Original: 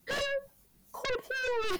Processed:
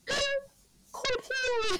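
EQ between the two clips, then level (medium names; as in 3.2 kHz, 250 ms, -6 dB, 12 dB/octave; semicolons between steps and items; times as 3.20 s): distance through air 89 m; tone controls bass 0 dB, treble +15 dB; +2.0 dB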